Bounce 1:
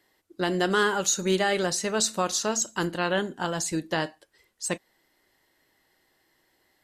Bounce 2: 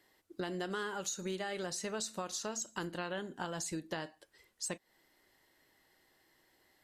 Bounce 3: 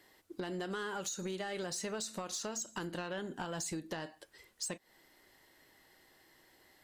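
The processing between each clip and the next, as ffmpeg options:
-af "acompressor=threshold=0.0178:ratio=5,volume=0.794"
-af "acompressor=threshold=0.01:ratio=6,asoftclip=type=tanh:threshold=0.0168,volume=1.88"

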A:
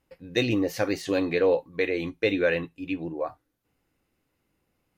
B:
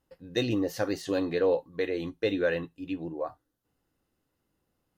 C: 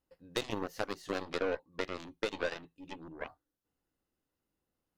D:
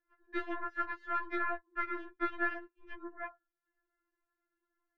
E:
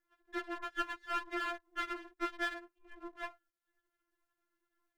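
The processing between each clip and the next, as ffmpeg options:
-af "equalizer=f=2300:t=o:w=0.27:g=-12,volume=0.708"
-af "equalizer=f=120:t=o:w=0.77:g=-4,aeval=exprs='0.2*(cos(1*acos(clip(val(0)/0.2,-1,1)))-cos(1*PI/2))+0.0178*(cos(4*acos(clip(val(0)/0.2,-1,1)))-cos(4*PI/2))+0.0398*(cos(7*acos(clip(val(0)/0.2,-1,1)))-cos(7*PI/2))':c=same,acompressor=threshold=0.0251:ratio=3"
-af "lowpass=f=1600:t=q:w=8.3,afftfilt=real='re*4*eq(mod(b,16),0)':imag='im*4*eq(mod(b,16),0)':win_size=2048:overlap=0.75"
-af "aeval=exprs='if(lt(val(0),0),0.251*val(0),val(0))':c=same,volume=1.5"

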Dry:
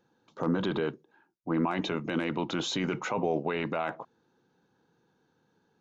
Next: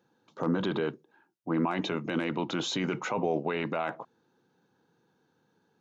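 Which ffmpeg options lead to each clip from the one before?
-af "highpass=85"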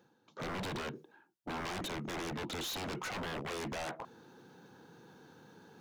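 -af "areverse,acompressor=mode=upward:threshold=0.00891:ratio=2.5,areverse,aeval=exprs='0.0251*(abs(mod(val(0)/0.0251+3,4)-2)-1)':c=same,volume=0.794"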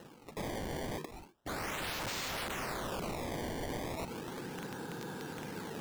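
-af "alimiter=level_in=6.68:limit=0.0631:level=0:latency=1:release=68,volume=0.15,acrusher=samples=19:mix=1:aa=0.000001:lfo=1:lforange=30.4:lforate=0.35,aeval=exprs='(mod(251*val(0)+1,2)-1)/251':c=same,volume=5.62"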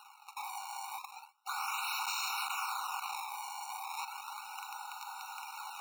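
-af "afftfilt=real='re*eq(mod(floor(b*sr/1024/740),2),1)':imag='im*eq(mod(floor(b*sr/1024/740),2),1)':win_size=1024:overlap=0.75,volume=1.88"

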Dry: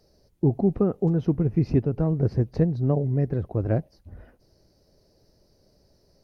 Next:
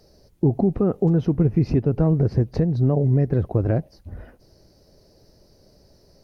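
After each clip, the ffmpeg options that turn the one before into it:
-af "alimiter=limit=0.141:level=0:latency=1:release=153,volume=2.24"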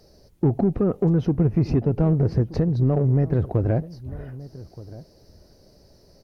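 -filter_complex "[0:a]asplit=2[s0][s1];[s1]asoftclip=type=tanh:threshold=0.1,volume=0.668[s2];[s0][s2]amix=inputs=2:normalize=0,asplit=2[s3][s4];[s4]adelay=1224,volume=0.126,highshelf=f=4000:g=-27.6[s5];[s3][s5]amix=inputs=2:normalize=0,volume=0.668"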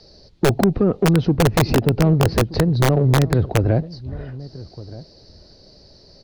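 -filter_complex "[0:a]lowpass=f=4300:t=q:w=3.7,acrossover=split=310|650[s0][s1][s2];[s0]aeval=exprs='(mod(5.31*val(0)+1,2)-1)/5.31':c=same[s3];[s3][s1][s2]amix=inputs=3:normalize=0,volume=1.58"

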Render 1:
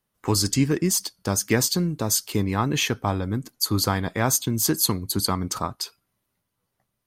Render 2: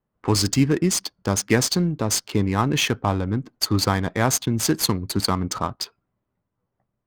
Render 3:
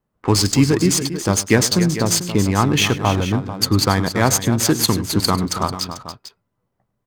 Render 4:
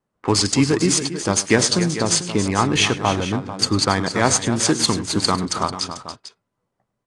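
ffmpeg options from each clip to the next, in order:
-af "adynamicsmooth=sensitivity=6.5:basefreq=1400,volume=1.33"
-af "aecho=1:1:103|278|443:0.15|0.266|0.224,volume=1.58"
-af "lowshelf=f=140:g=-9.5" -ar 22050 -c:a aac -b:a 48k

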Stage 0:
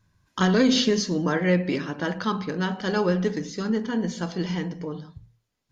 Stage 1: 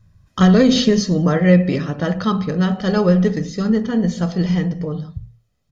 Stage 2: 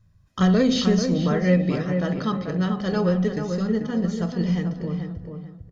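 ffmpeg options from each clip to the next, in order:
-af "lowshelf=f=370:g=11,aecho=1:1:1.6:0.47,volume=1.26"
-filter_complex "[0:a]asplit=2[s0][s1];[s1]adelay=439,lowpass=f=2000:p=1,volume=0.501,asplit=2[s2][s3];[s3]adelay=439,lowpass=f=2000:p=1,volume=0.29,asplit=2[s4][s5];[s5]adelay=439,lowpass=f=2000:p=1,volume=0.29,asplit=2[s6][s7];[s7]adelay=439,lowpass=f=2000:p=1,volume=0.29[s8];[s0][s2][s4][s6][s8]amix=inputs=5:normalize=0,volume=0.473"

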